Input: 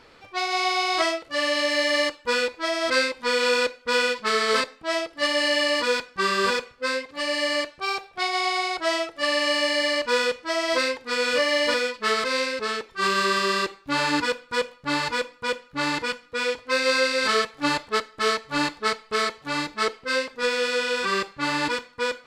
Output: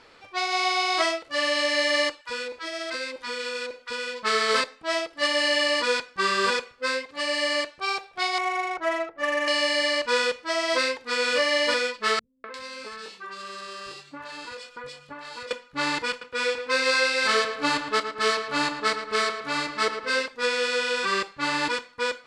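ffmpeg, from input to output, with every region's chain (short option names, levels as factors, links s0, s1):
-filter_complex "[0:a]asettb=1/sr,asplit=3[s0][s1][s2];[s0]atrim=end=2.214[s3];[s1]atrim=start=2.21:end=4.23,asetpts=PTS-STARTPTS,afade=t=in:d=0.004:c=qsin,afade=t=out:st=2.016:d=0.004:c=qsin,acompressor=threshold=0.0447:ratio=5:attack=3.2:release=140:knee=1:detection=peak,acrossover=split=960[s4][s5];[s4]adelay=40[s6];[s6][s5]amix=inputs=2:normalize=0,atrim=end_sample=89082[s7];[s2]atrim=start=4.226[s8];[s3][s7]acrossfade=d=0.004:c1=hsin:c2=qsin[s9];[s9][s8]acrossfade=d=0.004:c1=qsin:c2=hsin,asettb=1/sr,asplit=3[s10][s11][s12];[s10]atrim=end=8.384[s13];[s11]atrim=start=8.38:end=9.48,asetpts=PTS-STARTPTS,afade=t=in:d=0.004:c=qsin,afade=t=out:st=1.096:d=0.004:c=qsin,lowpass=f=2400:w=0.5412,lowpass=f=2400:w=1.3066,adynamicsmooth=sensitivity=6:basefreq=1700[s14];[s12]atrim=start=9.476[s15];[s13][s14]acrossfade=d=0.004:c1=hsin:c2=qsin[s16];[s16][s15]acrossfade=d=0.004:c1=qsin:c2=hsin,asettb=1/sr,asplit=3[s17][s18][s19];[s17]atrim=end=12.194[s20];[s18]atrim=start=12.19:end=15.51,asetpts=PTS-STARTPTS,afade=t=in:d=0.004:c=qsin,afade=t=out:st=3.316:d=0.004:c=qsin,asplit=2[s21][s22];[s22]adelay=22,volume=0.501[s23];[s21][s23]amix=inputs=2:normalize=0,atrim=end_sample=146412,acompressor=threshold=0.0251:ratio=16:attack=3.2:release=140:knee=1:detection=peak,acrossover=split=160|2200[s24][s25][s26];[s25]adelay=250[s27];[s26]adelay=350[s28];[s24][s27][s28]amix=inputs=3:normalize=0,atrim=end_sample=146412[s29];[s19]atrim=start=15.506[s30];[s20][s29]acrossfade=d=0.004:c1=hsin:c2=qsin[s31];[s31][s30]acrossfade=d=0.004:c1=qsin:c2=hsin,asettb=1/sr,asplit=3[s32][s33][s34];[s32]atrim=end=16.104[s35];[s33]atrim=start=16.1:end=20.26,asetpts=PTS-STARTPTS,afade=t=in:d=0.004:c=qsin,afade=t=out:st=4.156:d=0.004:c=qsin,asplit=2[s36][s37];[s37]adelay=32,volume=0.2[s38];[s36][s38]amix=inputs=2:normalize=0,atrim=end_sample=183456,asplit=2[s39][s40];[s40]adelay=112,lowpass=f=2700:p=1,volume=0.398,asplit=2[s41][s42];[s42]adelay=112,lowpass=f=2700:p=1,volume=0.55,asplit=2[s43][s44];[s44]adelay=112,lowpass=f=2700:p=1,volume=0.55,asplit=2[s45][s46];[s46]adelay=112,lowpass=f=2700:p=1,volume=0.55,asplit=2[s47][s48];[s48]adelay=112,lowpass=f=2700:p=1,volume=0.55,asplit=2[s49][s50];[s50]adelay=112,lowpass=f=2700:p=1,volume=0.55,asplit=2[s51][s52];[s52]adelay=112,lowpass=f=2700:p=1,volume=0.55[s53];[s39][s41][s43][s45][s47][s49][s51][s53]amix=inputs=8:normalize=0,atrim=end_sample=183456[s54];[s34]atrim=start=20.256[s55];[s35][s54]acrossfade=d=0.004:c1=hsin:c2=qsin[s56];[s56][s55]acrossfade=d=0.004:c1=qsin:c2=hsin,lowpass=f=11000:w=0.5412,lowpass=f=11000:w=1.3066,lowshelf=f=310:g=-6"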